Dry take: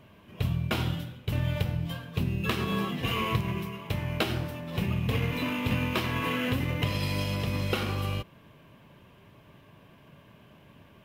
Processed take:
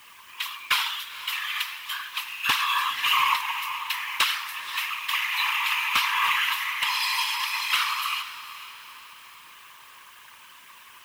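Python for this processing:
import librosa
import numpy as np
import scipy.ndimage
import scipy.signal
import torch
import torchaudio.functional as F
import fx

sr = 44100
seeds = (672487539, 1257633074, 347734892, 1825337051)

p1 = scipy.signal.sosfilt(scipy.signal.cheby1(8, 1.0, 980.0, 'highpass', fs=sr, output='sos'), x)
p2 = fx.peak_eq(p1, sr, hz=1400.0, db=-3.0, octaves=0.31)
p3 = fx.notch(p2, sr, hz=1500.0, q=21.0)
p4 = fx.rider(p3, sr, range_db=3, speed_s=2.0)
p5 = p3 + (p4 * librosa.db_to_amplitude(1.5))
p6 = fx.fold_sine(p5, sr, drive_db=9, ceiling_db=-6.0)
p7 = fx.quant_dither(p6, sr, seeds[0], bits=8, dither='triangular')
p8 = fx.whisperise(p7, sr, seeds[1])
p9 = p8 + fx.echo_diffused(p8, sr, ms=484, feedback_pct=44, wet_db=-14.0, dry=0)
y = p9 * librosa.db_to_amplitude(-7.5)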